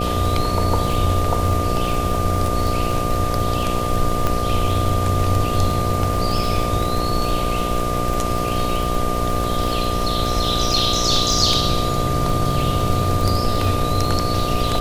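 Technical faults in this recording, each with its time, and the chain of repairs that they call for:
buzz 60 Hz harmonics 12 -25 dBFS
crackle 53 per s -22 dBFS
whine 1.2 kHz -24 dBFS
4.27 s: pop -6 dBFS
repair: de-click; de-hum 60 Hz, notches 12; band-stop 1.2 kHz, Q 30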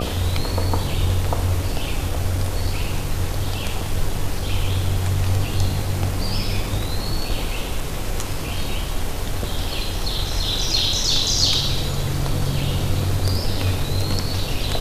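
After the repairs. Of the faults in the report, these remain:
nothing left

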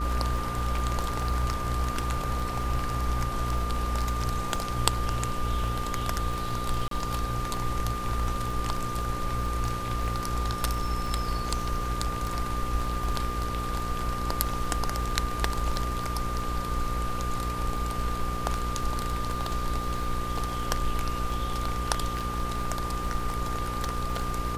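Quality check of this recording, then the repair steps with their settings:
buzz 60 Hz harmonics 9 -34 dBFS
crackle 28 per s -34 dBFS
whine 1.2 kHz -33 dBFS
6.88–6.91 s: dropout 33 ms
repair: de-click; de-hum 60 Hz, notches 9; band-stop 1.2 kHz, Q 30; interpolate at 6.88 s, 33 ms

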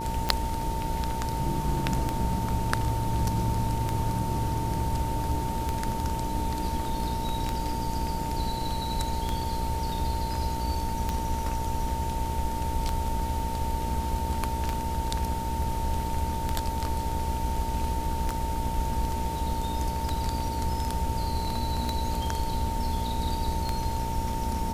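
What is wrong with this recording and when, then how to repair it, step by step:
buzz 60 Hz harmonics 13 -34 dBFS
tick 33 1/3 rpm -13 dBFS
whine 900 Hz -32 dBFS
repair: de-click; de-hum 60 Hz, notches 13; band-stop 900 Hz, Q 30

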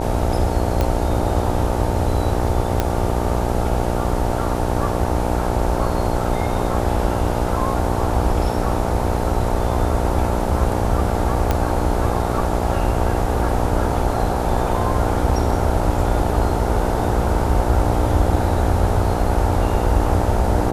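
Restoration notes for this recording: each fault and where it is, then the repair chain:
buzz 60 Hz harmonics 15 -23 dBFS
0.81 s: pop -7 dBFS
2.80 s: pop -5 dBFS
11.51 s: pop -5 dBFS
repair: de-click; de-hum 60 Hz, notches 15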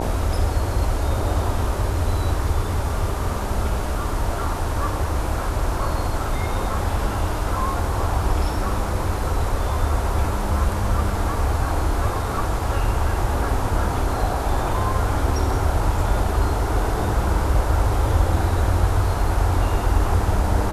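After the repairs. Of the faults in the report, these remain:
nothing left

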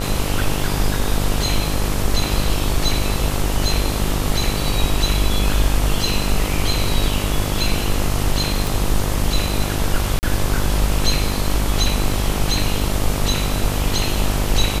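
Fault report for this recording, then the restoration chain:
buzz 50 Hz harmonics 27 -23 dBFS
8.67 s: pop
10.19–10.23 s: dropout 39 ms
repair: de-click; de-hum 50 Hz, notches 27; interpolate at 10.19 s, 39 ms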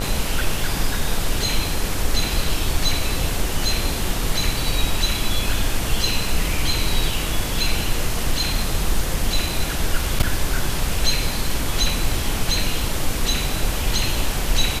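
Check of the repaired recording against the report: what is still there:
nothing left

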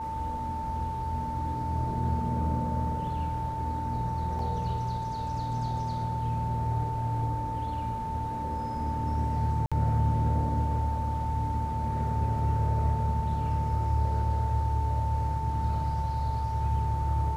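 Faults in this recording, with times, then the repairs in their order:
whine 890 Hz -32 dBFS
4.39 s: dropout 2.6 ms
9.66–9.72 s: dropout 56 ms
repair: band-stop 890 Hz, Q 30; interpolate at 4.39 s, 2.6 ms; interpolate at 9.66 s, 56 ms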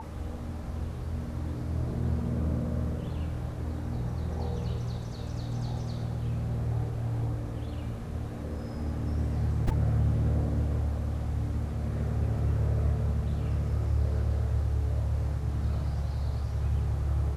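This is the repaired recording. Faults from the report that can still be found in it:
nothing left

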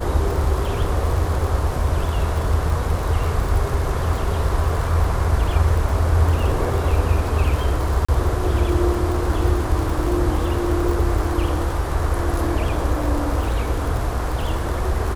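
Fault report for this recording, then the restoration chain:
crackle 58 per s -25 dBFS
8.05–8.09 s: dropout 35 ms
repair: de-click; interpolate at 8.05 s, 35 ms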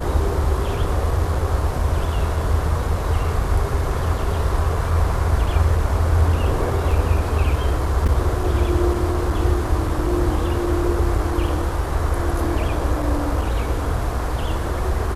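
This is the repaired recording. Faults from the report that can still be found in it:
nothing left

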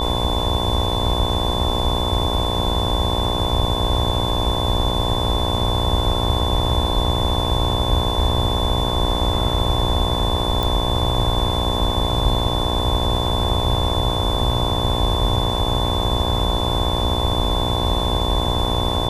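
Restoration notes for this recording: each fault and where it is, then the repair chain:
buzz 60 Hz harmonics 18 -24 dBFS
whine 3.5 kHz -25 dBFS
10.63 s: pop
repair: de-click; band-stop 3.5 kHz, Q 30; de-hum 60 Hz, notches 18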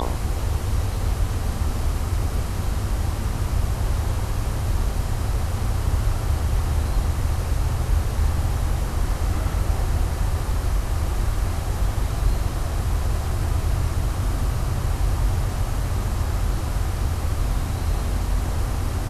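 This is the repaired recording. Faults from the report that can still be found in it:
nothing left

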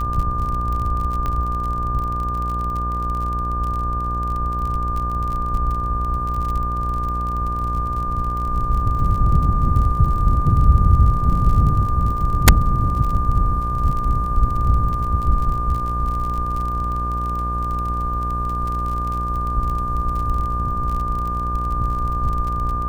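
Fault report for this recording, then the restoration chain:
buzz 60 Hz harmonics 29 -25 dBFS
crackle 37 per s -26 dBFS
whine 1.2 kHz -23 dBFS
1.26 s: pop -13 dBFS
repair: de-click; de-hum 60 Hz, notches 29; band-stop 1.2 kHz, Q 30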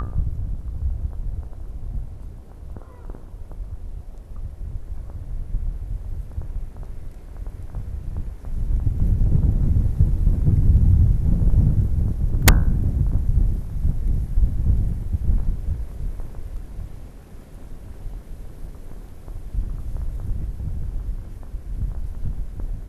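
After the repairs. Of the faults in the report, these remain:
nothing left

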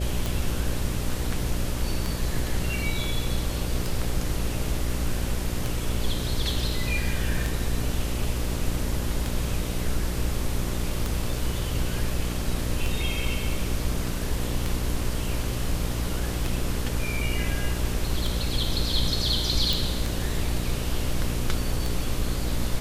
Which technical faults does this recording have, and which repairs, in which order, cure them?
buzz 60 Hz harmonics 10 -30 dBFS
tick 33 1/3 rpm
19.73 s: pop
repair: de-click; de-hum 60 Hz, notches 10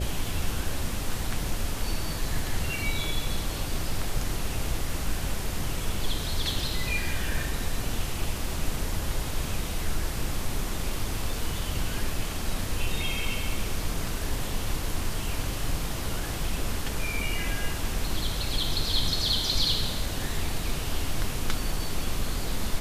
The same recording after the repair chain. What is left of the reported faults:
nothing left

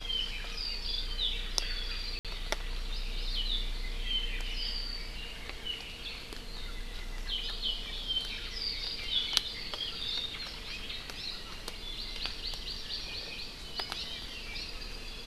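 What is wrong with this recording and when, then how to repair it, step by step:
2.19–2.25 s: dropout 57 ms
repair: interpolate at 2.19 s, 57 ms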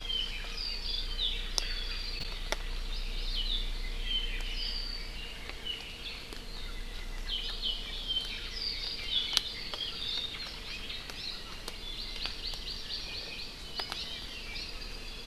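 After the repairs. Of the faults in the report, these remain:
nothing left

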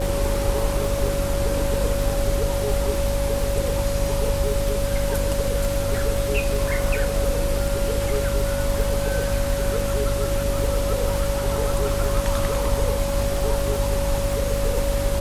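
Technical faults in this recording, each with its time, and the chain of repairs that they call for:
crackle 51 per s -26 dBFS
hum 50 Hz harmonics 6 -27 dBFS
whine 560 Hz -25 dBFS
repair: de-click; de-hum 50 Hz, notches 6; band-stop 560 Hz, Q 30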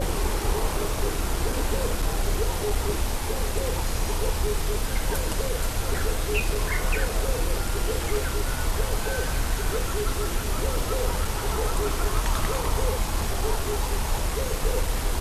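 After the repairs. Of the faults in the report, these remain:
nothing left

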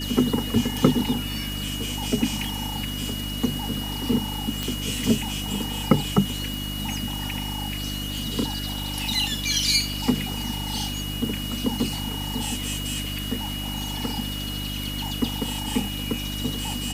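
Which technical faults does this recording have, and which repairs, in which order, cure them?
hum 50 Hz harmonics 6 -32 dBFS
whine 2.9 kHz -33 dBFS
4.63 s: pop
6.54 s: pop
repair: de-click; band-stop 2.9 kHz, Q 30; de-hum 50 Hz, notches 6

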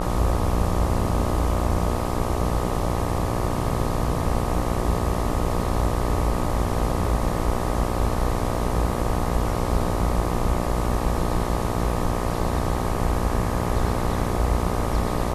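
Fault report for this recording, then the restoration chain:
buzz 60 Hz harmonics 21 -27 dBFS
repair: de-hum 60 Hz, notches 21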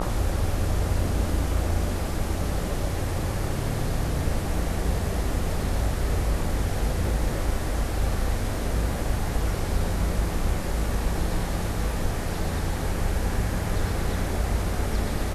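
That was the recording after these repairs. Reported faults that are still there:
nothing left

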